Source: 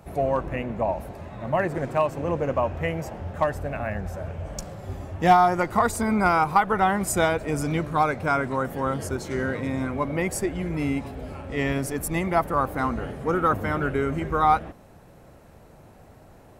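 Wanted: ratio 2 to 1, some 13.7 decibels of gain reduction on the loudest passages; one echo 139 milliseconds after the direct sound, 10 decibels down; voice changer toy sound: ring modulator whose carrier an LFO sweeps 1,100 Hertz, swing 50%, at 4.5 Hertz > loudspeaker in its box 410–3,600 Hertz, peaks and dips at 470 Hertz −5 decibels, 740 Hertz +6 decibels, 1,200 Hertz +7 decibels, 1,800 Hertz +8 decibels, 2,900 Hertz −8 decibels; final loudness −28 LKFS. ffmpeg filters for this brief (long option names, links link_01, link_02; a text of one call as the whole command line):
ffmpeg -i in.wav -af "acompressor=threshold=-38dB:ratio=2,aecho=1:1:139:0.316,aeval=exprs='val(0)*sin(2*PI*1100*n/s+1100*0.5/4.5*sin(2*PI*4.5*n/s))':channel_layout=same,highpass=410,equalizer=frequency=470:width_type=q:width=4:gain=-5,equalizer=frequency=740:width_type=q:width=4:gain=6,equalizer=frequency=1200:width_type=q:width=4:gain=7,equalizer=frequency=1800:width_type=q:width=4:gain=8,equalizer=frequency=2900:width_type=q:width=4:gain=-8,lowpass=frequency=3600:width=0.5412,lowpass=frequency=3600:width=1.3066,volume=4.5dB" out.wav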